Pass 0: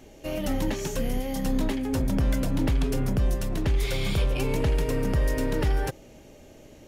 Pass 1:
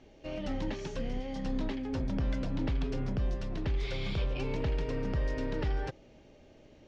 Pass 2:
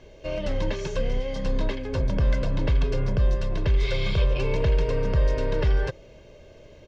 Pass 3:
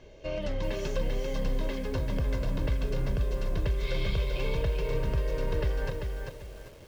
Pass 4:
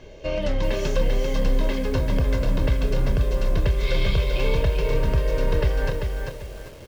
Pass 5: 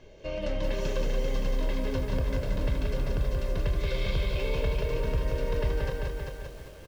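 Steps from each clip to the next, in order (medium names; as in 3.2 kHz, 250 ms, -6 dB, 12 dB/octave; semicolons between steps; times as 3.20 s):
low-pass 5.2 kHz 24 dB/octave; trim -7.5 dB
comb 1.9 ms, depth 59%; trim +7 dB
compression 2.5:1, threshold -25 dBFS, peak gain reduction 6 dB; bit-crushed delay 392 ms, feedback 35%, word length 8-bit, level -4.5 dB; trim -3 dB
doubling 27 ms -12 dB; trim +7.5 dB
delay 179 ms -3.5 dB; on a send at -24 dB: reverberation, pre-delay 3 ms; on the sum: trim -8 dB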